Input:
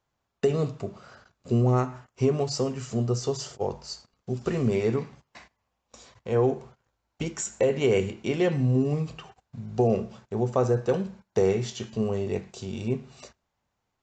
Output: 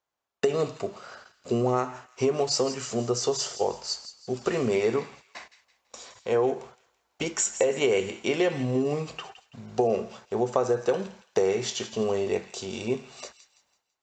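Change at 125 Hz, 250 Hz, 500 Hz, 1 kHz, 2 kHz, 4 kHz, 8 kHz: -9.0, -2.5, +1.0, +2.5, +4.0, +6.0, +6.5 dB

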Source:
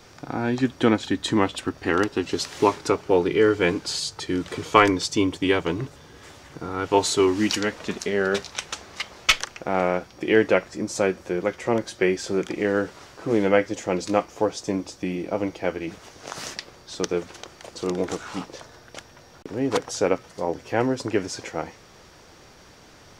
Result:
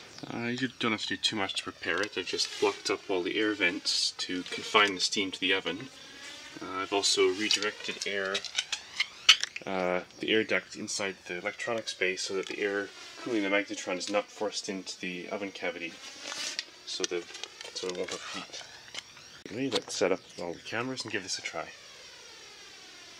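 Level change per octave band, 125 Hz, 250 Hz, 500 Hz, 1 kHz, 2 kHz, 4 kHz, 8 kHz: -14.0, -10.5, -9.5, -9.5, -2.5, +2.0, -2.0 dB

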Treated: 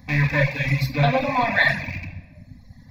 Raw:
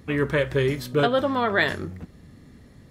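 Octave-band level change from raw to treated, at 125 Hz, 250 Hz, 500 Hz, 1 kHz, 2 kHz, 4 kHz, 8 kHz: +7.5 dB, +0.5 dB, -3.5 dB, +3.5 dB, +5.5 dB, +0.5 dB, n/a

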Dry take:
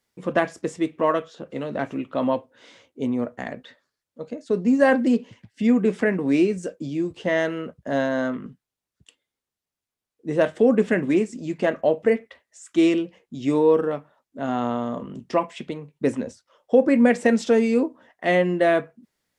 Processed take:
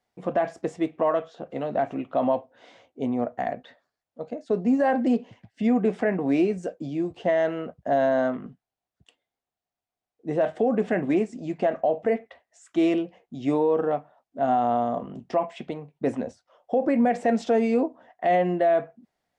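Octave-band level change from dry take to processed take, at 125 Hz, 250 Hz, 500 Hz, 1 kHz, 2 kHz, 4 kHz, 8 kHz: -3.5 dB, -3.5 dB, -2.5 dB, +2.5 dB, -7.0 dB, -7.0 dB, n/a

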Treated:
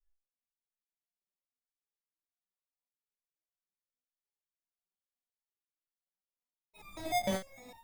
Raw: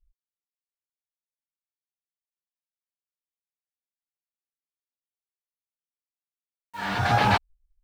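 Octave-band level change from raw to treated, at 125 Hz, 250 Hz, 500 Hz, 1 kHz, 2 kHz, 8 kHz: -19.5, -9.0, -5.5, -14.0, -16.5, -0.5 dB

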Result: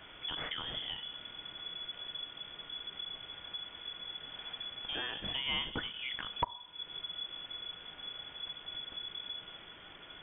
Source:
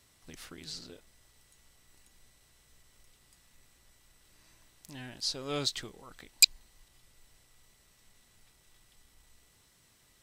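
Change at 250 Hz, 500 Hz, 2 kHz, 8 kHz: -3.5 dB, -4.5 dB, +1.0 dB, under -40 dB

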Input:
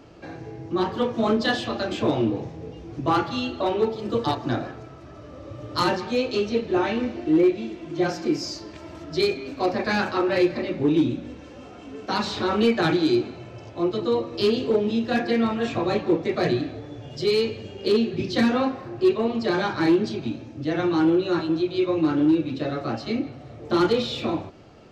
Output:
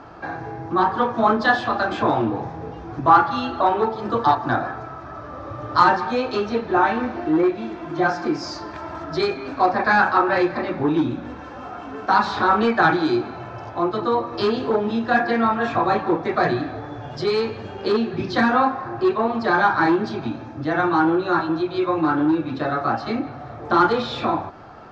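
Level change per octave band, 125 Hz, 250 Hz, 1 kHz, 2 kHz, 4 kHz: +0.5, 0.0, +10.5, +8.0, -2.0 dB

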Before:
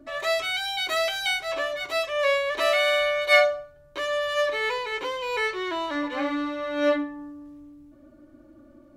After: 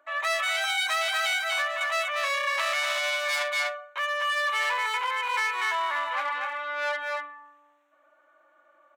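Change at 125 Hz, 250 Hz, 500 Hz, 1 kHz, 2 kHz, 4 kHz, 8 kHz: n/a, under -30 dB, -10.0 dB, +2.0 dB, +0.5 dB, -1.0 dB, +3.5 dB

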